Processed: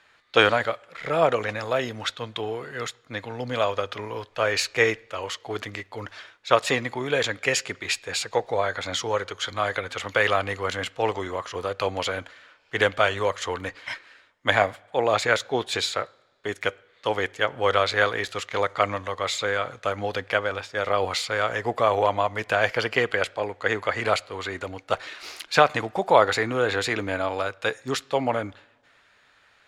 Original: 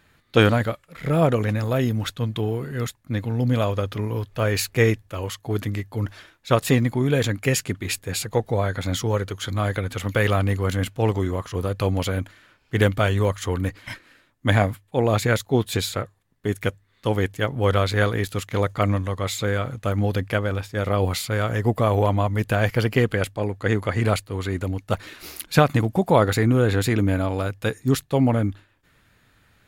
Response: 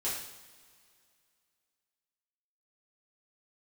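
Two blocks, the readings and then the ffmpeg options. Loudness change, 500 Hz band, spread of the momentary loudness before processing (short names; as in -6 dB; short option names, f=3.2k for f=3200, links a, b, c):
-2.0 dB, -1.0 dB, 9 LU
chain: -filter_complex "[0:a]acrossover=split=460 7600:gain=0.112 1 0.0631[a][b][c];[a][b][c]amix=inputs=3:normalize=0,asplit=2[d][e];[1:a]atrim=start_sample=2205,lowpass=4.6k[f];[e][f]afir=irnorm=-1:irlink=0,volume=-25.5dB[g];[d][g]amix=inputs=2:normalize=0,volume=3dB"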